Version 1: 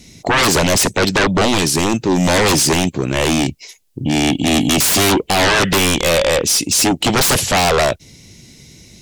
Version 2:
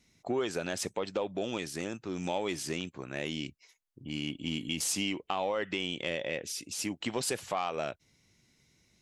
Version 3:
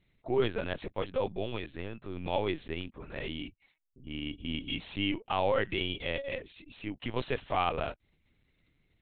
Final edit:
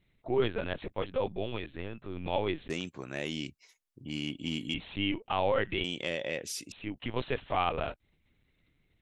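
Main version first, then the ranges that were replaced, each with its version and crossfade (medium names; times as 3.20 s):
3
2.70–4.74 s: from 2
5.84–6.72 s: from 2
not used: 1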